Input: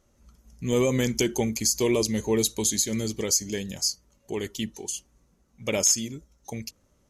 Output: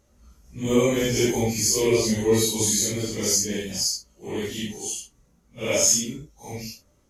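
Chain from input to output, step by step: phase scrambler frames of 0.2 s; gain +3 dB

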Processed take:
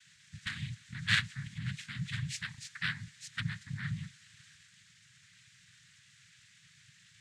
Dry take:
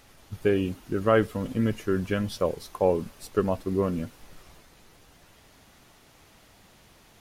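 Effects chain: added harmonics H 3 -6 dB, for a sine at -9 dBFS; noise vocoder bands 6; elliptic band-stop 150–1700 Hz, stop band 70 dB; gain +3.5 dB

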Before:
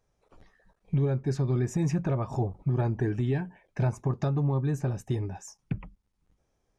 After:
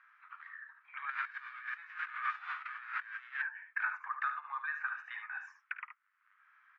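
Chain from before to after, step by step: 1.09–3.33 spectral whitening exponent 0.3; steep high-pass 1300 Hz 48 dB/oct; early reflections 52 ms -15 dB, 74 ms -9 dB; negative-ratio compressor -41 dBFS, ratio -0.5; LPF 1700 Hz 24 dB/oct; three-band squash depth 40%; gain +9.5 dB

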